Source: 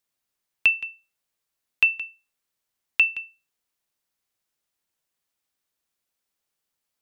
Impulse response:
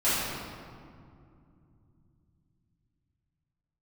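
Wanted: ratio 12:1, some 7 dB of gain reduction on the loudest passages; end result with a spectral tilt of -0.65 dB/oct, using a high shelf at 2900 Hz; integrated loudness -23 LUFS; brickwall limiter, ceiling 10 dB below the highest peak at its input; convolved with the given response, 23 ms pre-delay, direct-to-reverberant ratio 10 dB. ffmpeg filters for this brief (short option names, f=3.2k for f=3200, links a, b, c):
-filter_complex "[0:a]highshelf=f=2.9k:g=-3.5,acompressor=threshold=-22dB:ratio=12,alimiter=limit=-20dB:level=0:latency=1,asplit=2[a][b];[1:a]atrim=start_sample=2205,adelay=23[c];[b][c]afir=irnorm=-1:irlink=0,volume=-24dB[d];[a][d]amix=inputs=2:normalize=0,volume=11.5dB"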